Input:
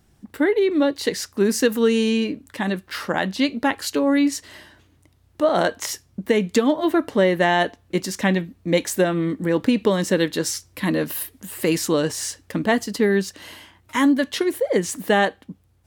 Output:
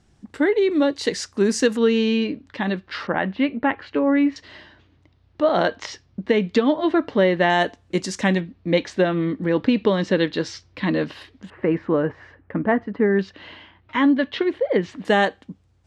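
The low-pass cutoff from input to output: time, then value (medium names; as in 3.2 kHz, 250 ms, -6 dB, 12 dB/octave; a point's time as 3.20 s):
low-pass 24 dB/octave
8.1 kHz
from 1.77 s 4.7 kHz
from 3.07 s 2.6 kHz
from 4.36 s 4.7 kHz
from 7.50 s 8.3 kHz
from 8.40 s 4.5 kHz
from 11.50 s 1.9 kHz
from 13.19 s 3.6 kHz
from 15.05 s 7.5 kHz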